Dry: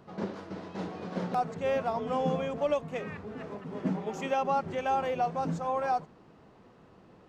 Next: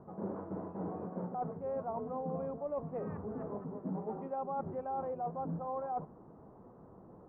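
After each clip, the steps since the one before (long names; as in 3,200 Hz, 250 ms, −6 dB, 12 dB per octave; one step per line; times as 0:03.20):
low-pass filter 1,100 Hz 24 dB per octave
reversed playback
downward compressor, threshold −37 dBFS, peak gain reduction 13 dB
reversed playback
level +1.5 dB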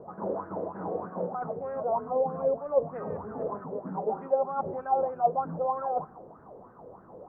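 on a send at −22 dB: convolution reverb RT60 1.2 s, pre-delay 30 ms
on the sum: auto-filter bell 3.2 Hz 480–1,600 Hz +18 dB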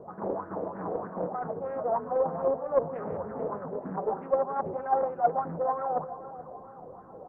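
repeating echo 432 ms, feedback 52%, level −14 dB
highs frequency-modulated by the lows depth 0.34 ms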